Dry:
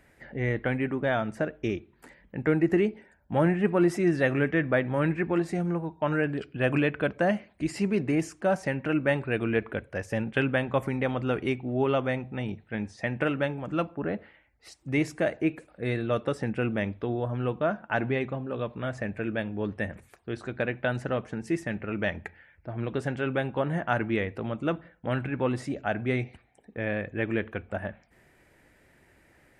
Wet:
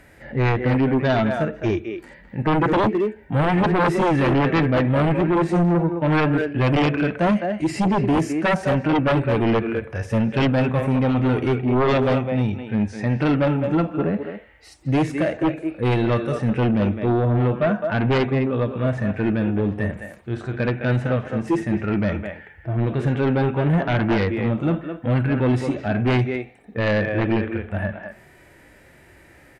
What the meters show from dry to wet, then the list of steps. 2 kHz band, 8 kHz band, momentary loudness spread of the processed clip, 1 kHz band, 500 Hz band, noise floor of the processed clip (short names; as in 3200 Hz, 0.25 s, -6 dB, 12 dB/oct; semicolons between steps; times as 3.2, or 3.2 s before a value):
+4.0 dB, n/a, 8 LU, +9.5 dB, +6.0 dB, -50 dBFS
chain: harmonic-percussive split percussive -17 dB; speakerphone echo 0.21 s, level -7 dB; sine folder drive 12 dB, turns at -13 dBFS; gain -1.5 dB